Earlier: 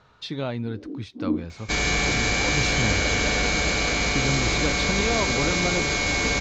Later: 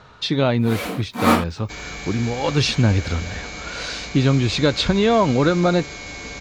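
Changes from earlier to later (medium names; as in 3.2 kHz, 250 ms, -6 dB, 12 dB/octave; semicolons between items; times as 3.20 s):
speech +10.5 dB; first sound: remove Butterworth band-pass 310 Hz, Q 3; second sound -10.5 dB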